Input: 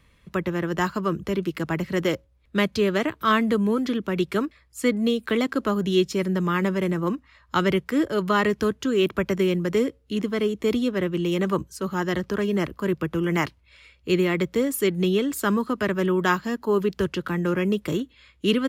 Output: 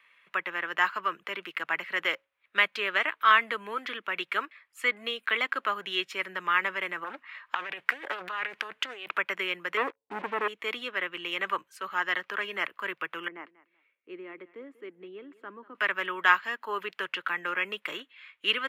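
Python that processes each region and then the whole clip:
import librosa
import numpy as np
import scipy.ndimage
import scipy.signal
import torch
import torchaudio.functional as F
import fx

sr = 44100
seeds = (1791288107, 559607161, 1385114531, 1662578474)

y = fx.chain(x, sr, fx.over_compress(threshold_db=-29.0, ratio=-1.0),
    fx.doppler_dist(depth_ms=0.59), at=(7.04, 9.18))
y = fx.chain(y, sr, fx.brickwall_lowpass(high_hz=1100.0),
    fx.leveller(passes=3), at=(9.77, 10.48))
y = fx.chain(y, sr, fx.bandpass_q(hz=290.0, q=2.1),
    fx.echo_feedback(ms=190, feedback_pct=21, wet_db=-19), at=(13.28, 15.75))
y = scipy.signal.sosfilt(scipy.signal.butter(2, 1200.0, 'highpass', fs=sr, output='sos'), y)
y = fx.high_shelf_res(y, sr, hz=3700.0, db=-13.0, q=1.5)
y = y * librosa.db_to_amplitude(3.0)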